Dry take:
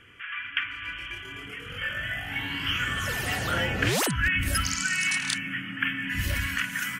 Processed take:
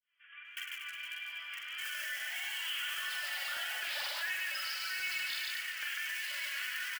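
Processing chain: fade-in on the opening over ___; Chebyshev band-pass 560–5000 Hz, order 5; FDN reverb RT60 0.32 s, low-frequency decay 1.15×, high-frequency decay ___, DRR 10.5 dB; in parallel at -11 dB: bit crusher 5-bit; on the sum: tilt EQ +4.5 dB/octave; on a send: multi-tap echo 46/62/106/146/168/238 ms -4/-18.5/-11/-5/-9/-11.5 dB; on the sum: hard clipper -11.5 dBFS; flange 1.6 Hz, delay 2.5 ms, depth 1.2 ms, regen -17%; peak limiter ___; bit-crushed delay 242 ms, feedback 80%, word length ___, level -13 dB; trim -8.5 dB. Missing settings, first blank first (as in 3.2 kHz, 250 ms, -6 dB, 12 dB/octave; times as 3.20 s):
1.47 s, 1×, -21 dBFS, 9-bit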